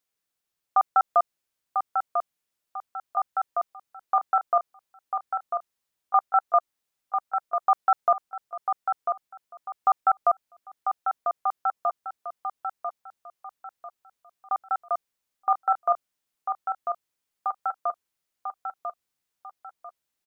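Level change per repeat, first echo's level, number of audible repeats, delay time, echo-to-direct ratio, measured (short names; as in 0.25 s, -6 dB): -9.5 dB, -6.0 dB, 4, 0.995 s, -5.5 dB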